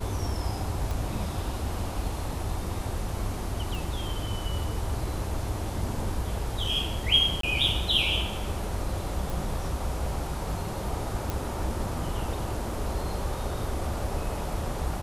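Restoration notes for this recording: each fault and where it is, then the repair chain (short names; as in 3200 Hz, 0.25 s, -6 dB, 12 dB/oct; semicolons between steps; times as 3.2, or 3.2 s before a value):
0.91 pop
3.75 pop
7.41–7.43 gap 23 ms
9.3 pop
11.3 pop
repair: de-click; interpolate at 7.41, 23 ms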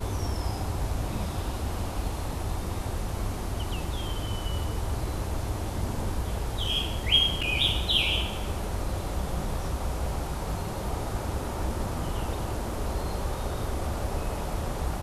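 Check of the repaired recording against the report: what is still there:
3.75 pop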